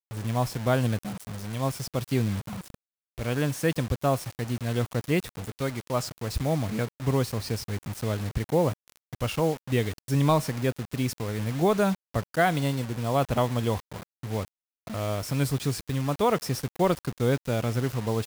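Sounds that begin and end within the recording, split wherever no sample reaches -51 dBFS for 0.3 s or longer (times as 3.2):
3.18–14.48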